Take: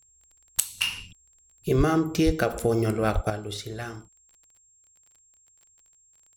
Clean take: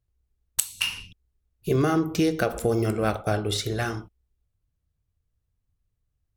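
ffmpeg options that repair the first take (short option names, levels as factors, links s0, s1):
-filter_complex "[0:a]adeclick=t=4,bandreject=f=7500:w=30,asplit=3[s0][s1][s2];[s0]afade=t=out:st=1.77:d=0.02[s3];[s1]highpass=f=140:w=0.5412,highpass=f=140:w=1.3066,afade=t=in:st=1.77:d=0.02,afade=t=out:st=1.89:d=0.02[s4];[s2]afade=t=in:st=1.89:d=0.02[s5];[s3][s4][s5]amix=inputs=3:normalize=0,asplit=3[s6][s7][s8];[s6]afade=t=out:st=2.25:d=0.02[s9];[s7]highpass=f=140:w=0.5412,highpass=f=140:w=1.3066,afade=t=in:st=2.25:d=0.02,afade=t=out:st=2.37:d=0.02[s10];[s8]afade=t=in:st=2.37:d=0.02[s11];[s9][s10][s11]amix=inputs=3:normalize=0,asplit=3[s12][s13][s14];[s12]afade=t=out:st=3.14:d=0.02[s15];[s13]highpass=f=140:w=0.5412,highpass=f=140:w=1.3066,afade=t=in:st=3.14:d=0.02,afade=t=out:st=3.26:d=0.02[s16];[s14]afade=t=in:st=3.26:d=0.02[s17];[s15][s16][s17]amix=inputs=3:normalize=0,asetnsamples=n=441:p=0,asendcmd='3.3 volume volume 7.5dB',volume=1"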